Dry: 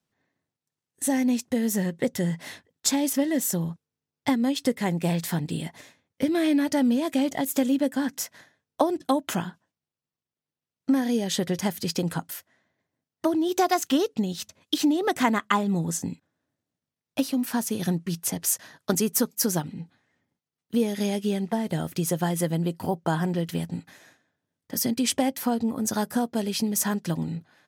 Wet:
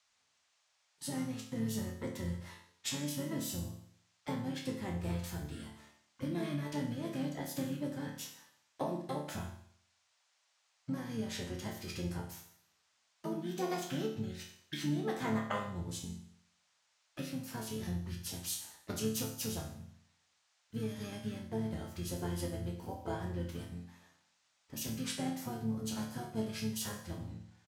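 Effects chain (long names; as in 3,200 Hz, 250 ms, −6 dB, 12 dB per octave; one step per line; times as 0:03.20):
pitch-shifted copies added −12 semitones −3 dB, −7 semitones −9 dB
resonators tuned to a chord D2 minor, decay 0.61 s
noise in a band 610–7,300 Hz −76 dBFS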